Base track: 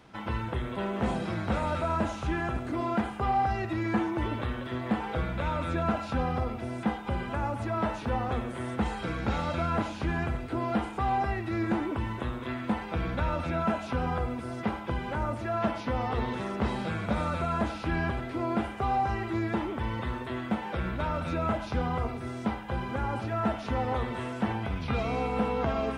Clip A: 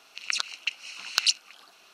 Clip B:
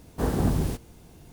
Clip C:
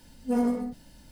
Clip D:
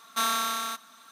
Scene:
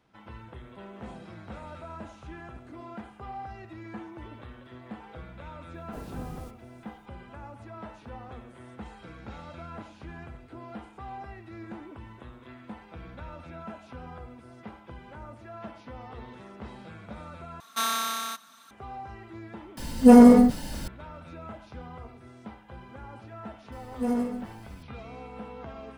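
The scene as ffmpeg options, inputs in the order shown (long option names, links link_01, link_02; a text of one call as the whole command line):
ffmpeg -i bed.wav -i cue0.wav -i cue1.wav -i cue2.wav -i cue3.wav -filter_complex "[3:a]asplit=2[link_01][link_02];[0:a]volume=-13dB[link_03];[4:a]asubboost=boost=8:cutoff=170[link_04];[link_01]alimiter=level_in=20dB:limit=-1dB:release=50:level=0:latency=1[link_05];[link_03]asplit=2[link_06][link_07];[link_06]atrim=end=17.604[link_08];[link_04]atrim=end=1.11,asetpts=PTS-STARTPTS,volume=-1dB[link_09];[link_07]atrim=start=18.706[link_10];[2:a]atrim=end=1.32,asetpts=PTS-STARTPTS,volume=-15.5dB,afade=type=in:duration=0.004:curve=hsin,afade=type=out:start_time=1.316:duration=0.004:curve=hsin,adelay=5740[link_11];[link_05]atrim=end=1.11,asetpts=PTS-STARTPTS,volume=-3.5dB,afade=type=in:duration=0.004:curve=hsin,afade=type=out:start_time=1.106:duration=0.004:curve=hsin,adelay=19770[link_12];[link_02]atrim=end=1.11,asetpts=PTS-STARTPTS,volume=-2dB,afade=type=in:duration=0.004:curve=hsin,afade=type=out:start_time=1.106:duration=0.004:curve=hsin,adelay=1046052S[link_13];[link_08][link_09]acrossfade=duration=0.004:curve1=hsin:curve2=hsin[link_14];[link_14][link_10]acrossfade=duration=0.004:curve1=hsin:curve2=hsin[link_15];[link_15][link_11][link_12][link_13]amix=inputs=4:normalize=0" out.wav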